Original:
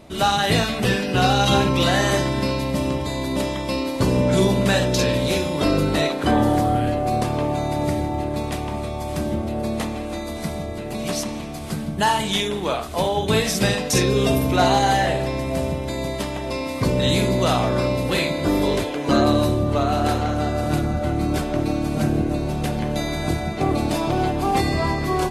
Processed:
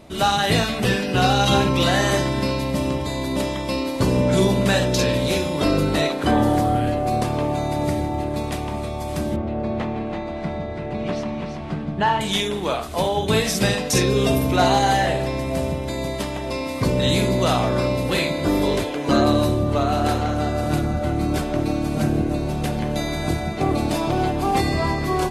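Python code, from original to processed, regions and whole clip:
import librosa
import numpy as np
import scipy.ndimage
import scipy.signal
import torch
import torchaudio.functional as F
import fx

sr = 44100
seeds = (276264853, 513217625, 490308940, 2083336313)

y = fx.chain(x, sr, fx.lowpass(hz=2500.0, slope=12),
    fx.echo_single(ms=333, db=-6.5), at=(9.36, 12.21))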